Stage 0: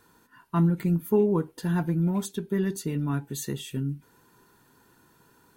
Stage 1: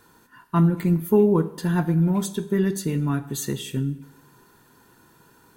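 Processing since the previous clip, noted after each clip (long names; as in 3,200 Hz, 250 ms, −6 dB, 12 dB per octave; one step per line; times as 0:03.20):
dense smooth reverb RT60 0.9 s, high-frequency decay 0.8×, DRR 12 dB
level +4.5 dB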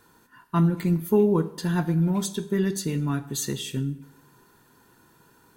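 dynamic equaliser 4,900 Hz, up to +6 dB, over −49 dBFS, Q 0.82
level −2.5 dB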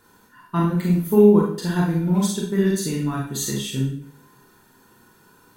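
four-comb reverb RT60 0.42 s, combs from 30 ms, DRR −1.5 dB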